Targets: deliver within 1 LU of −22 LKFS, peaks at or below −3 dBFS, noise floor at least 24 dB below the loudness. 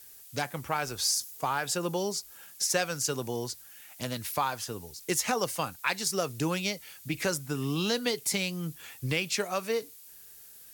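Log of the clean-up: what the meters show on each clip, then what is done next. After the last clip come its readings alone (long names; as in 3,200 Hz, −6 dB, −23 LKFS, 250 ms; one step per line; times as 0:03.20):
background noise floor −51 dBFS; target noise floor −55 dBFS; integrated loudness −31.0 LKFS; sample peak −13.0 dBFS; target loudness −22.0 LKFS
→ broadband denoise 6 dB, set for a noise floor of −51 dBFS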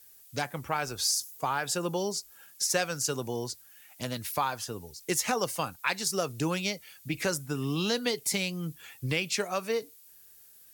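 background noise floor −55 dBFS; integrated loudness −31.0 LKFS; sample peak −13.0 dBFS; target loudness −22.0 LKFS
→ level +9 dB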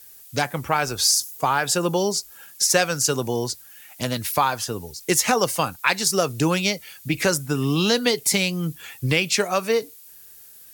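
integrated loudness −22.0 LKFS; sample peak −4.0 dBFS; background noise floor −46 dBFS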